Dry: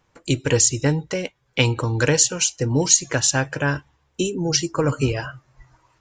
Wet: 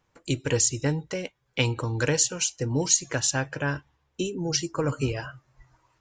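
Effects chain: 3.34–4.43 LPF 6900 Hz 12 dB/oct; gain -6 dB

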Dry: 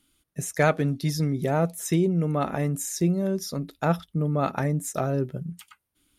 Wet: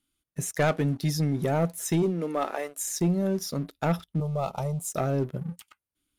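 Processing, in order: 2.02–2.85 HPF 170 Hz -> 600 Hz 24 dB/oct; sample leveller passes 2; 4.2–4.92 fixed phaser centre 710 Hz, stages 4; gain -7.5 dB

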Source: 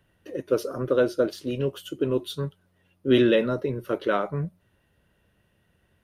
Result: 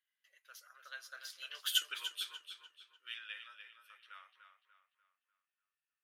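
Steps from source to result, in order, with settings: Doppler pass-by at 1.79, 20 m/s, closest 1.2 m; HPF 1500 Hz 24 dB/oct; tape echo 0.296 s, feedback 42%, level -7.5 dB, low-pass 5000 Hz; gain +12.5 dB

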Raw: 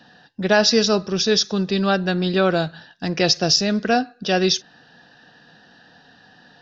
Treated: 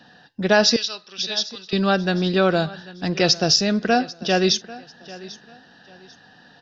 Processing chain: 0.76–1.73 band-pass 3400 Hz, Q 1.6; on a send: feedback echo 0.793 s, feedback 29%, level -19 dB

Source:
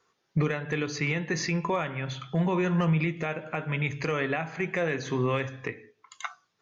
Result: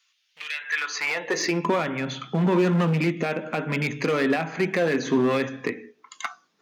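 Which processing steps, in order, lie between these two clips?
overloaded stage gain 23.5 dB; high-pass sweep 2800 Hz -> 230 Hz, 0.51–1.67; gain +5 dB

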